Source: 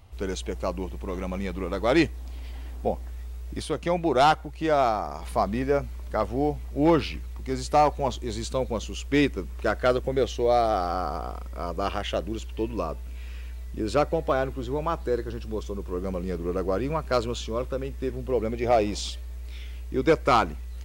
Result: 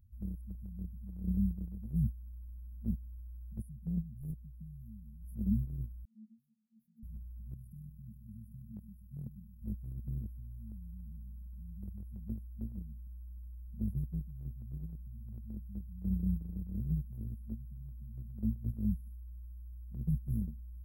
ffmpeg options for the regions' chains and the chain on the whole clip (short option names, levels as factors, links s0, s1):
-filter_complex "[0:a]asettb=1/sr,asplit=3[s0][s1][s2];[s0]atrim=end=6.054[s3];[s1]atrim=start=6.05:end=7.03,asetpts=PTS-STARTPTS,afade=t=in:d=0.004:c=qsin,afade=t=out:st=0.976:d=0.004:c=qsin,asuperpass=centerf=260:order=8:qfactor=2.9,aeval=exprs='0.0447*(abs(mod(val(0)/0.0447+3,4)-2)-1)':c=same[s4];[s2]atrim=start=7.026[s5];[s3][s4]acrossfade=d=0.004:c1=hsin:c2=qsin[s6];[s6][s5]acrossfade=d=0.004:c1=qsin:c2=hsin,asettb=1/sr,asplit=3[s7][s8][s9];[s7]atrim=end=7.544[s10];[s8]atrim=start=7.54:end=9.62,asetpts=PTS-STARTPTS,afade=t=in:d=0.004:c=qsin,afade=t=out:st=2.076:d=0.004:c=qsin,highpass=71,tremolo=f=40:d=0.462,aecho=1:1:127:0.316,atrim=end_sample=91728[s11];[s9]atrim=start=9.616[s12];[s10][s11]acrossfade=d=0.004:c1=hsin:c2=qsin[s13];[s13][s12]acrossfade=d=0.004:c1=qsin:c2=hsin,afftfilt=real='re*(1-between(b*sr/4096,230,9600))':imag='im*(1-between(b*sr/4096,230,9600))':win_size=4096:overlap=0.75,agate=range=0.251:threshold=0.0251:ratio=16:detection=peak,equalizer=f=9600:w=2.2:g=-8.5,volume=1.26"